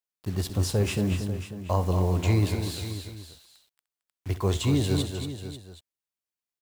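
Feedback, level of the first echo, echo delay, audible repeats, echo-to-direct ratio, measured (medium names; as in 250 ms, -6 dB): no regular repeats, -16.0 dB, 66 ms, 6, -5.0 dB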